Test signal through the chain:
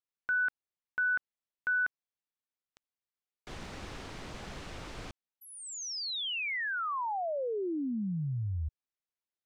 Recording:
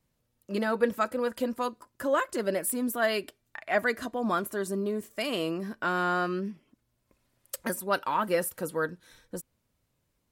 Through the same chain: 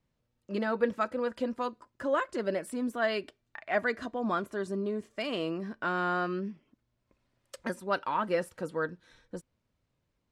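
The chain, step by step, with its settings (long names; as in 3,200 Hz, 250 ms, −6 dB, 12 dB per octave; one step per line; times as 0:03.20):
high-frequency loss of the air 96 metres
level −2 dB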